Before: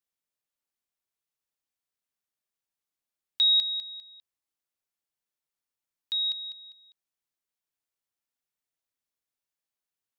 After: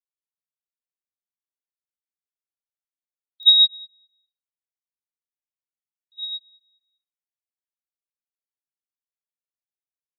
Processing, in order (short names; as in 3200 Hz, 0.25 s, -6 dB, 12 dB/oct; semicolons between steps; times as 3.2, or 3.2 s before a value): 4.15–6.16 LPF 3200 Hz 6 dB/oct; spectral gate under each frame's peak -25 dB strong; reverb RT60 0.30 s, pre-delay 41 ms, DRR -8.5 dB; pops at 3.43, -14 dBFS; upward expander 2.5:1, over -28 dBFS